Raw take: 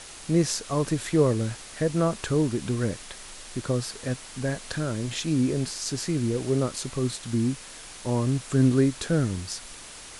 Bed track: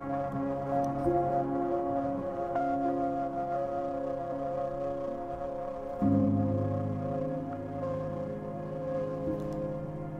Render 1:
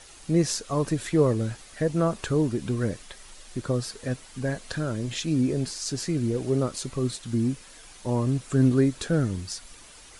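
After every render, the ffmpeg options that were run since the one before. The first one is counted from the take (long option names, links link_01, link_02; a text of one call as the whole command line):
ffmpeg -i in.wav -af "afftdn=noise_reduction=8:noise_floor=-43" out.wav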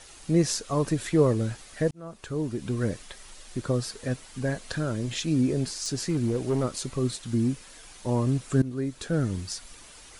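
ffmpeg -i in.wav -filter_complex "[0:a]asplit=3[link_01][link_02][link_03];[link_01]afade=type=out:start_time=5.71:duration=0.02[link_04];[link_02]volume=20dB,asoftclip=hard,volume=-20dB,afade=type=in:start_time=5.71:duration=0.02,afade=type=out:start_time=6.63:duration=0.02[link_05];[link_03]afade=type=in:start_time=6.63:duration=0.02[link_06];[link_04][link_05][link_06]amix=inputs=3:normalize=0,asplit=3[link_07][link_08][link_09];[link_07]atrim=end=1.91,asetpts=PTS-STARTPTS,afade=type=out:start_time=1.906:duration=0.004:curve=hsin[link_10];[link_08]atrim=start=1.91:end=8.62,asetpts=PTS-STARTPTS,afade=type=in:duration=0.99,afade=type=out:start_time=6.706:duration=0.004:curve=hsin:silence=0.11885[link_11];[link_09]atrim=start=8.62,asetpts=PTS-STARTPTS,afade=type=in:duration=0.74:silence=0.11885[link_12];[link_10][link_11][link_12]concat=n=3:v=0:a=1" out.wav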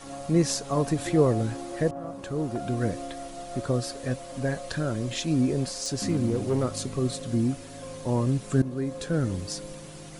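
ffmpeg -i in.wav -i bed.wav -filter_complex "[1:a]volume=-6.5dB[link_01];[0:a][link_01]amix=inputs=2:normalize=0" out.wav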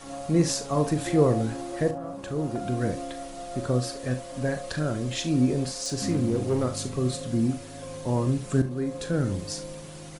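ffmpeg -i in.wav -af "aecho=1:1:40|71:0.299|0.168" out.wav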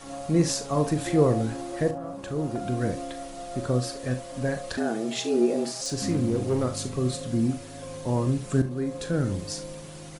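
ffmpeg -i in.wav -filter_complex "[0:a]asettb=1/sr,asplit=3[link_01][link_02][link_03];[link_01]atrim=end=4.774[link_04];[link_02]atrim=start=4.77:end=5.81,asetpts=PTS-STARTPTS,afade=type=in:duration=0.004:curve=qsin,afade=type=out:start_time=1.036:duration=0.004:curve=qsin,afreqshift=110[link_05];[link_03]atrim=start=5.806[link_06];[link_04][link_05]acrossfade=duration=0.004:curve1=hsin:curve2=qsin[link_07];[link_07][link_06]acrossfade=duration=0.004:curve1=qsin:curve2=hsin" out.wav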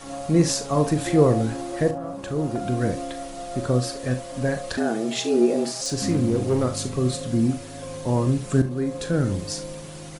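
ffmpeg -i in.wav -af "volume=3.5dB" out.wav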